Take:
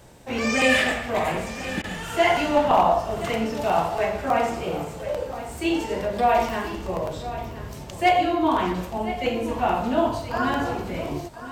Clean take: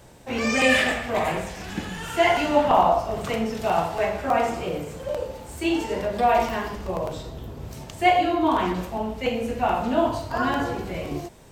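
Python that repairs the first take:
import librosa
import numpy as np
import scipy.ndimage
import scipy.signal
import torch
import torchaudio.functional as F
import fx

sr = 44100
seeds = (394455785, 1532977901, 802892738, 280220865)

y = fx.fix_declip(x, sr, threshold_db=-10.0)
y = fx.fix_interpolate(y, sr, at_s=(1.82,), length_ms=18.0)
y = fx.fix_echo_inverse(y, sr, delay_ms=1026, level_db=-13.5)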